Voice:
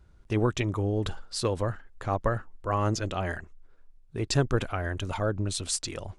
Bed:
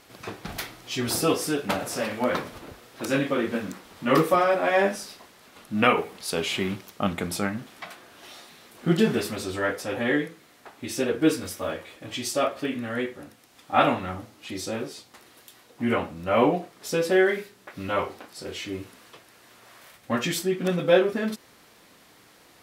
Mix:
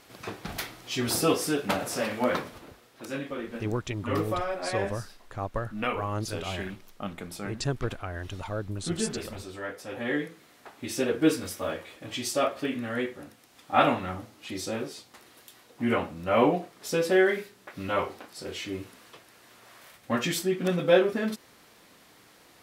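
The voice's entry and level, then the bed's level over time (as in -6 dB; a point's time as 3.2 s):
3.30 s, -5.0 dB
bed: 2.29 s -1 dB
3.03 s -10 dB
9.74 s -10 dB
10.42 s -1.5 dB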